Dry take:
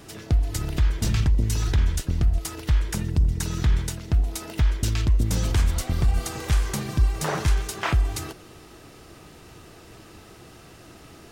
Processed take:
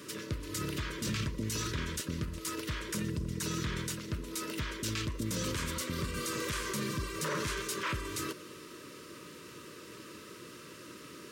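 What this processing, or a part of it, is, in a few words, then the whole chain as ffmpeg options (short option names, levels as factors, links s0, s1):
PA system with an anti-feedback notch: -af "highpass=190,asuperstop=centerf=760:order=12:qfactor=2.4,alimiter=level_in=1.19:limit=0.0631:level=0:latency=1:release=14,volume=0.841"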